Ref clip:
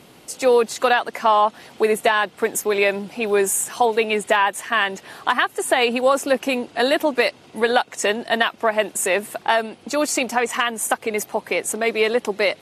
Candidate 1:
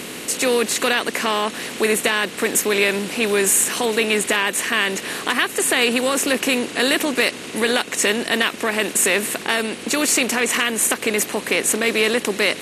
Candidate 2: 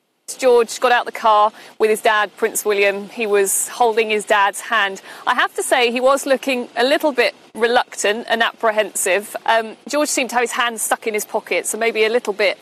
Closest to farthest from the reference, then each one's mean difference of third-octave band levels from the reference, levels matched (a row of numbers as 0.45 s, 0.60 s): 2, 1; 2.0 dB, 9.0 dB